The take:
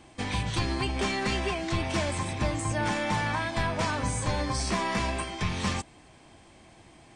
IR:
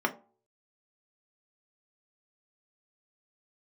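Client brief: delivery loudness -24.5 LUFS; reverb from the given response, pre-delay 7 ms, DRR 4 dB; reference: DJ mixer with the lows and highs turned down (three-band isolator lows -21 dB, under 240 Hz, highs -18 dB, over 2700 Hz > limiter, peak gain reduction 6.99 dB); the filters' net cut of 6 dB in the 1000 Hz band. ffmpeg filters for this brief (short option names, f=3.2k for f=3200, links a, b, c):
-filter_complex "[0:a]equalizer=f=1k:t=o:g=-7,asplit=2[a][b];[1:a]atrim=start_sample=2205,adelay=7[c];[b][c]afir=irnorm=-1:irlink=0,volume=-14dB[d];[a][d]amix=inputs=2:normalize=0,acrossover=split=240 2700:gain=0.0891 1 0.126[e][f][g];[e][f][g]amix=inputs=3:normalize=0,volume=11.5dB,alimiter=limit=-15dB:level=0:latency=1"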